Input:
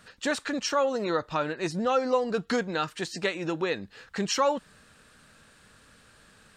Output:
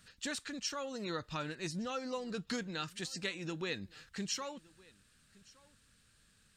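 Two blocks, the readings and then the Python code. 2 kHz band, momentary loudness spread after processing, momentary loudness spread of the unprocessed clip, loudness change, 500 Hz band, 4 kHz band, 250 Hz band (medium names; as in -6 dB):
-9.5 dB, 4 LU, 6 LU, -11.0 dB, -15.5 dB, -6.0 dB, -9.5 dB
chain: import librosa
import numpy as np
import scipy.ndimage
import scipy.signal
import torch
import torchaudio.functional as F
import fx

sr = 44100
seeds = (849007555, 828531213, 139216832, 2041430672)

p1 = fx.peak_eq(x, sr, hz=700.0, db=-14.0, octaves=2.9)
p2 = fx.rider(p1, sr, range_db=4, speed_s=0.5)
p3 = p2 + fx.echo_single(p2, sr, ms=1166, db=-24.0, dry=0)
y = p3 * librosa.db_to_amplitude(-3.0)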